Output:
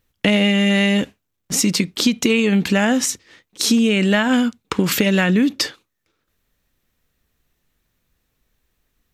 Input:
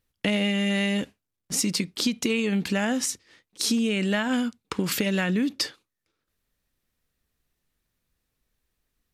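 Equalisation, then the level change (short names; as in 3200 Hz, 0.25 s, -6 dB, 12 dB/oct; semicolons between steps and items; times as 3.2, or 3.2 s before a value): bell 4800 Hz -3.5 dB 0.33 oct; bell 9700 Hz -5.5 dB 0.38 oct; +8.5 dB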